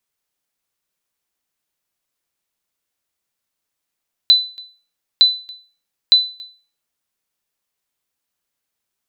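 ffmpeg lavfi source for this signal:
-f lavfi -i "aevalsrc='0.708*(sin(2*PI*4000*mod(t,0.91))*exp(-6.91*mod(t,0.91)/0.38)+0.0531*sin(2*PI*4000*max(mod(t,0.91)-0.28,0))*exp(-6.91*max(mod(t,0.91)-0.28,0)/0.38))':d=2.73:s=44100"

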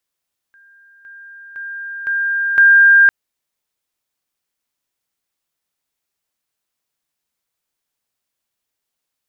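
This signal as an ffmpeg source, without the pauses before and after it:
-f lavfi -i "aevalsrc='pow(10,(-45.5+10*floor(t/0.51))/20)*sin(2*PI*1600*t)':d=2.55:s=44100"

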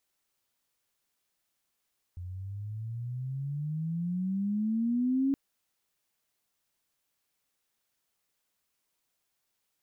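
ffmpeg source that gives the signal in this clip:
-f lavfi -i "aevalsrc='pow(10,(-23.5+13.5*(t/3.17-1))/20)*sin(2*PI*87.4*3.17/(20*log(2)/12)*(exp(20*log(2)/12*t/3.17)-1))':d=3.17:s=44100"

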